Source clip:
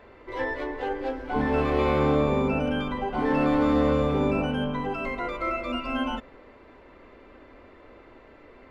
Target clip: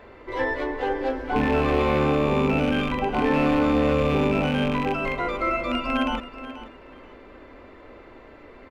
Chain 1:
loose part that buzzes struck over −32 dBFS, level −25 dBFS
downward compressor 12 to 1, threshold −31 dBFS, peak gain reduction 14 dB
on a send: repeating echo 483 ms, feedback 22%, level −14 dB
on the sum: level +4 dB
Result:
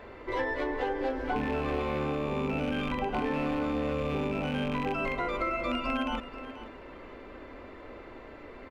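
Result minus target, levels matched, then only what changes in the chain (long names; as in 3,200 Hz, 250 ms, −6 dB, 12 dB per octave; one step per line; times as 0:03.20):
downward compressor: peak gain reduction +10 dB
change: downward compressor 12 to 1, threshold −20 dBFS, peak gain reduction 3.5 dB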